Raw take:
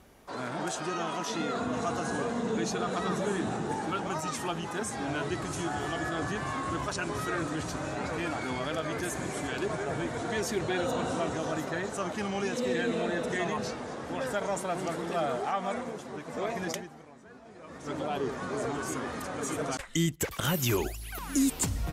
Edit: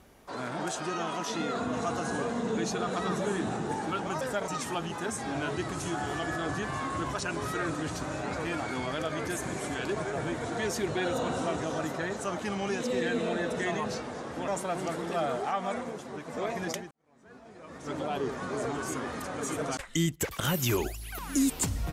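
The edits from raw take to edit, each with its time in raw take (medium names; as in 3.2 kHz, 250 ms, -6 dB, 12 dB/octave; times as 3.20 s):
14.21–14.48 s: move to 4.21 s
16.91–17.33 s: fade in quadratic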